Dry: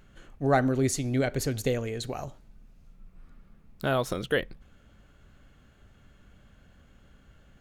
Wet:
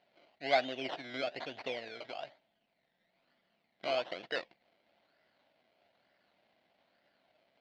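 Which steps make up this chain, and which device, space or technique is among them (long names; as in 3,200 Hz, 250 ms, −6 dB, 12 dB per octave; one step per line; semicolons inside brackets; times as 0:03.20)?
circuit-bent sampling toy (sample-and-hold swept by an LFO 19×, swing 60% 1.1 Hz; loudspeaker in its box 430–4,400 Hz, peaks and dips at 430 Hz −5 dB, 670 Hz +9 dB, 1,200 Hz −7 dB, 2,100 Hz +6 dB, 3,000 Hz +5 dB, 4,300 Hz +7 dB)
level −8.5 dB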